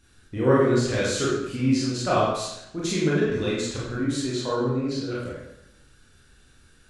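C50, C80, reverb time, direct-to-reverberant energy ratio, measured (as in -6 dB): -0.5 dB, 2.5 dB, 0.85 s, -7.5 dB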